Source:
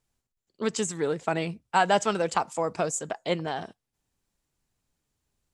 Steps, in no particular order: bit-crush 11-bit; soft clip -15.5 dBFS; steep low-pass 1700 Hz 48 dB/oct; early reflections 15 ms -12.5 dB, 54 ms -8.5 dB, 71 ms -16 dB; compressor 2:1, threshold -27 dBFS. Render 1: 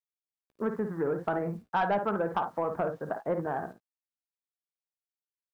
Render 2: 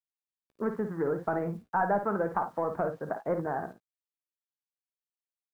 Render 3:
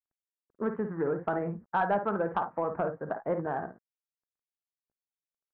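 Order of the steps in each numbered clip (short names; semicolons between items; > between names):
steep low-pass > bit-crush > early reflections > soft clip > compressor; soft clip > steep low-pass > compressor > bit-crush > early reflections; compressor > early reflections > bit-crush > steep low-pass > soft clip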